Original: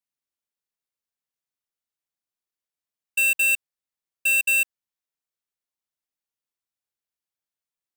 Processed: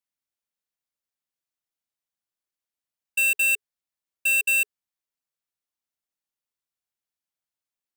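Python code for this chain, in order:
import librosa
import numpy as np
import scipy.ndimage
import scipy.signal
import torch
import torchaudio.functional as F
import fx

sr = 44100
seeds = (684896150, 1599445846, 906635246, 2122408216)

y = fx.notch(x, sr, hz=420.0, q=12.0)
y = y * 10.0 ** (-1.0 / 20.0)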